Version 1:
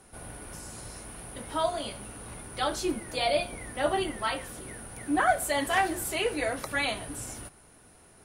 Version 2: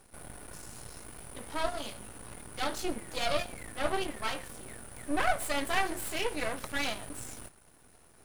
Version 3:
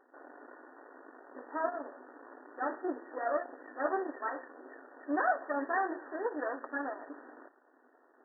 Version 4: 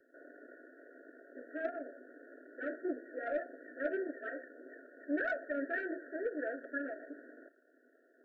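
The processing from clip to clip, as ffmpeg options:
ffmpeg -i in.wav -af "aeval=exprs='max(val(0),0)':channel_layout=same" out.wav
ffmpeg -i in.wav -af "afftfilt=real='re*between(b*sr/4096,240,1900)':imag='im*between(b*sr/4096,240,1900)':win_size=4096:overlap=0.75" out.wav
ffmpeg -i in.wav -filter_complex "[0:a]acrossover=split=380|430|970[link_01][link_02][link_03][link_04];[link_03]asoftclip=type=tanh:threshold=-33.5dB[link_05];[link_01][link_02][link_05][link_04]amix=inputs=4:normalize=0,asuperstop=centerf=980:order=20:qfactor=1.4,volume=-1dB" out.wav

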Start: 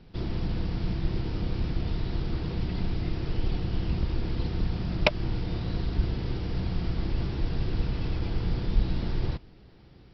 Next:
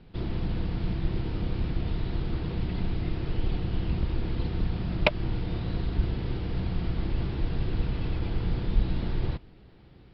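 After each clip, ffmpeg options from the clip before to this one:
ffmpeg -i in.wav -af "lowpass=frequency=4200:width=0.5412,lowpass=frequency=4200:width=1.3066" out.wav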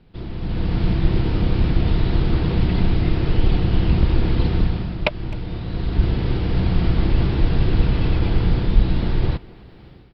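ffmpeg -i in.wav -filter_complex "[0:a]dynaudnorm=framelen=380:gausssize=3:maxgain=13dB,asplit=2[link_01][link_02];[link_02]adelay=260,highpass=300,lowpass=3400,asoftclip=type=hard:threshold=-9.5dB,volume=-20dB[link_03];[link_01][link_03]amix=inputs=2:normalize=0,volume=-1dB" out.wav

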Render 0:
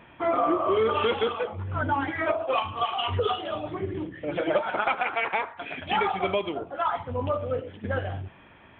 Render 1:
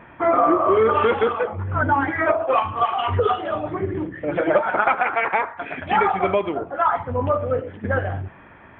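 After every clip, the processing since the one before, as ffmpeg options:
ffmpeg -i in.wav -af "highshelf=frequency=2400:width_type=q:width=1.5:gain=-8.5,volume=6dB" out.wav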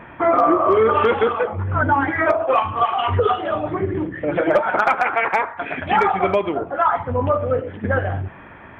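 ffmpeg -i in.wav -filter_complex "[0:a]asplit=2[link_01][link_02];[link_02]acompressor=threshold=-29dB:ratio=4,volume=-2dB[link_03];[link_01][link_03]amix=inputs=2:normalize=0,asoftclip=type=hard:threshold=-6.5dB" out.wav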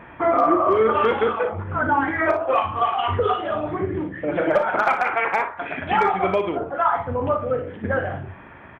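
ffmpeg -i in.wav -af "aecho=1:1:37|59:0.299|0.316,volume=-3dB" out.wav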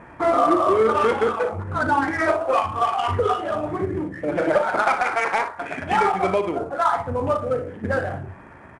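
ffmpeg -i in.wav -af "adynamicsmooth=sensitivity=2:basefreq=2400" -ar 22050 -c:a adpcm_ima_wav out.wav

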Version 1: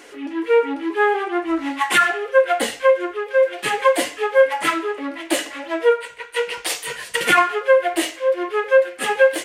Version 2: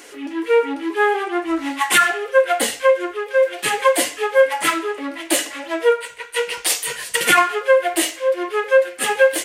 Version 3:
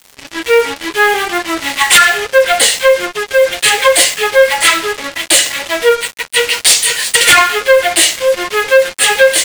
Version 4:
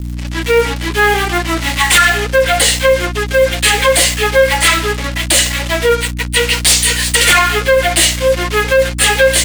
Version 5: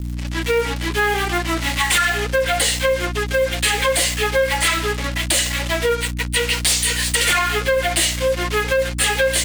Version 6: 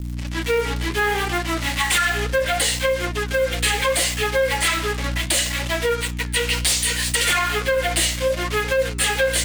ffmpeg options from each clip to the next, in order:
ffmpeg -i in.wav -af "highshelf=frequency=5000:gain=9.5" out.wav
ffmpeg -i in.wav -af "equalizer=frequency=250:width_type=o:width=1:gain=-10,equalizer=frequency=500:width_type=o:width=1:gain=5,equalizer=frequency=2000:width_type=o:width=1:gain=6,equalizer=frequency=4000:width_type=o:width=1:gain=11,equalizer=frequency=8000:width_type=o:width=1:gain=9,acrusher=bits=3:mix=0:aa=0.5,acontrast=36,volume=-1dB" out.wav
ffmpeg -i in.wav -filter_complex "[0:a]aeval=exprs='val(0)+0.1*(sin(2*PI*60*n/s)+sin(2*PI*2*60*n/s)/2+sin(2*PI*3*60*n/s)/3+sin(2*PI*4*60*n/s)/4+sin(2*PI*5*60*n/s)/5)':channel_layout=same,acrossover=split=390|1300[link_01][link_02][link_03];[link_03]asoftclip=type=hard:threshold=-5.5dB[link_04];[link_01][link_02][link_04]amix=inputs=3:normalize=0,alimiter=level_in=1dB:limit=-1dB:release=50:level=0:latency=1,volume=-1dB" out.wav
ffmpeg -i in.wav -af "acompressor=threshold=-12dB:ratio=2.5,volume=-4dB" out.wav
ffmpeg -i in.wav -af "flanger=delay=7.1:depth=9.5:regen=88:speed=0.69:shape=sinusoidal,volume=2.5dB" out.wav

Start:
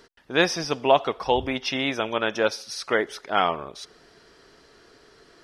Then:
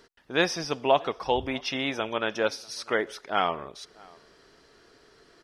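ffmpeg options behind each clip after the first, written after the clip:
ffmpeg -i in.wav -filter_complex "[0:a]asplit=2[link_01][link_02];[link_02]adelay=641.4,volume=-25dB,highshelf=frequency=4000:gain=-14.4[link_03];[link_01][link_03]amix=inputs=2:normalize=0,volume=-3.5dB" out.wav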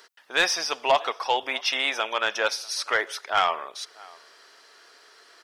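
ffmpeg -i in.wav -af "highpass=780,highshelf=frequency=10000:gain=4.5,asoftclip=type=tanh:threshold=-18dB,volume=7dB" out.wav

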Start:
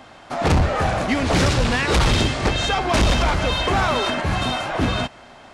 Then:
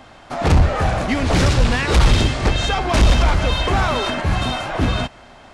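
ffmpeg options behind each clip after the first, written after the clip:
ffmpeg -i in.wav -af "lowshelf=frequency=76:gain=9.5" out.wav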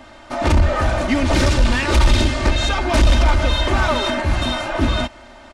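ffmpeg -i in.wav -af "asoftclip=type=tanh:threshold=-9.5dB,aecho=1:1:3.3:0.67" out.wav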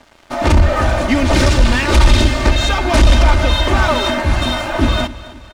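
ffmpeg -i in.wav -af "aeval=exprs='sgn(val(0))*max(abs(val(0))-0.00944,0)':channel_layout=same,aecho=1:1:264|528|792|1056:0.133|0.0653|0.032|0.0157,volume=4dB" out.wav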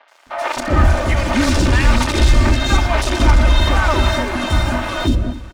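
ffmpeg -i in.wav -filter_complex "[0:a]asoftclip=type=tanh:threshold=-3.5dB,acrossover=split=530|3400[link_01][link_02][link_03];[link_03]adelay=80[link_04];[link_01]adelay=260[link_05];[link_05][link_02][link_04]amix=inputs=3:normalize=0" out.wav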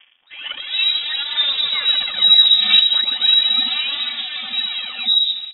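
ffmpeg -i in.wav -af "aphaser=in_gain=1:out_gain=1:delay=3.7:decay=0.72:speed=0.37:type=sinusoidal,lowpass=frequency=3300:width_type=q:width=0.5098,lowpass=frequency=3300:width_type=q:width=0.6013,lowpass=frequency=3300:width_type=q:width=0.9,lowpass=frequency=3300:width_type=q:width=2.563,afreqshift=-3900,volume=-10dB" out.wav

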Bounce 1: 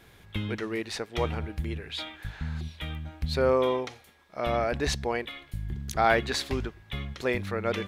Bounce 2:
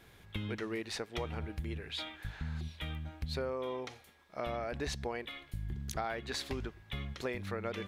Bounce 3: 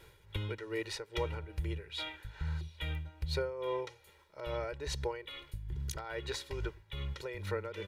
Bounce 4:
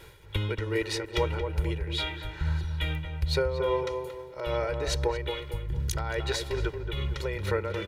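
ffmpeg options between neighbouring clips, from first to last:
ffmpeg -i in.wav -af "acompressor=threshold=-29dB:ratio=10,volume=-4dB" out.wav
ffmpeg -i in.wav -af "aeval=exprs='0.0668*(abs(mod(val(0)/0.0668+3,4)-2)-1)':channel_layout=same,aecho=1:1:2.1:0.94,tremolo=f=2.4:d=0.66" out.wav
ffmpeg -i in.wav -filter_complex "[0:a]asplit=2[link_01][link_02];[link_02]adelay=228,lowpass=frequency=1300:poles=1,volume=-5.5dB,asplit=2[link_03][link_04];[link_04]adelay=228,lowpass=frequency=1300:poles=1,volume=0.44,asplit=2[link_05][link_06];[link_06]adelay=228,lowpass=frequency=1300:poles=1,volume=0.44,asplit=2[link_07][link_08];[link_08]adelay=228,lowpass=frequency=1300:poles=1,volume=0.44,asplit=2[link_09][link_10];[link_10]adelay=228,lowpass=frequency=1300:poles=1,volume=0.44[link_11];[link_01][link_03][link_05][link_07][link_09][link_11]amix=inputs=6:normalize=0,volume=8dB" out.wav

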